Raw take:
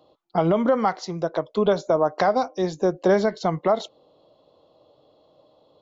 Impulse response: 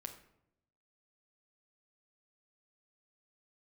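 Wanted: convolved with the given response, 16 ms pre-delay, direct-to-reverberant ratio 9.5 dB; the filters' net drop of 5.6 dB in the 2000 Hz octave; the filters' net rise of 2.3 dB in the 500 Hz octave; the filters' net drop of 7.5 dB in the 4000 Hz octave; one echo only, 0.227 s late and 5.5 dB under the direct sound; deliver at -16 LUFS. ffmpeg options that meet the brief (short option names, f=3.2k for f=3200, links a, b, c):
-filter_complex "[0:a]equalizer=f=500:t=o:g=3.5,equalizer=f=2k:t=o:g=-7,equalizer=f=4k:t=o:g=-7.5,aecho=1:1:227:0.531,asplit=2[a][b];[1:a]atrim=start_sample=2205,adelay=16[c];[b][c]afir=irnorm=-1:irlink=0,volume=-6dB[d];[a][d]amix=inputs=2:normalize=0,volume=4dB"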